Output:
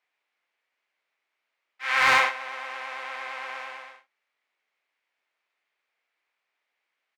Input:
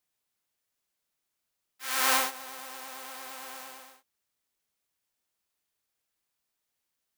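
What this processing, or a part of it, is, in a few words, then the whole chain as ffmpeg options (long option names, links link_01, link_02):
megaphone: -filter_complex "[0:a]highpass=500,lowpass=2600,equalizer=frequency=2200:width_type=o:width=0.57:gain=8,asoftclip=type=hard:threshold=-19.5dB,asplit=2[link_01][link_02];[link_02]adelay=44,volume=-10dB[link_03];[link_01][link_03]amix=inputs=2:normalize=0,volume=7.5dB"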